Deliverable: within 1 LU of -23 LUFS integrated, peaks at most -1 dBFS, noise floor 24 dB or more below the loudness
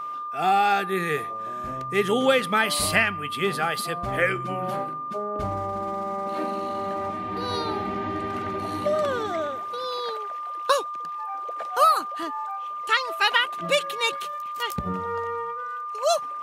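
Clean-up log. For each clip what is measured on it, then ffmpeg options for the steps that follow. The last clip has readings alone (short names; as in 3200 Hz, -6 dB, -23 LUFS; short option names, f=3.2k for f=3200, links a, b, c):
steady tone 1200 Hz; tone level -30 dBFS; loudness -25.5 LUFS; peak -5.5 dBFS; loudness target -23.0 LUFS
-> -af "bandreject=f=1.2k:w=30"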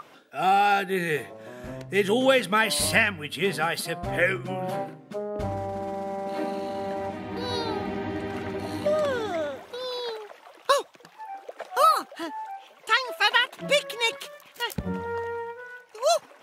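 steady tone none; loudness -26.0 LUFS; peak -6.0 dBFS; loudness target -23.0 LUFS
-> -af "volume=3dB"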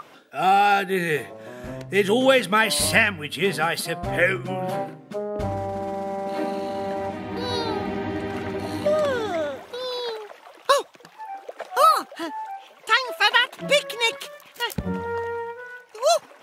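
loudness -23.0 LUFS; peak -3.0 dBFS; noise floor -50 dBFS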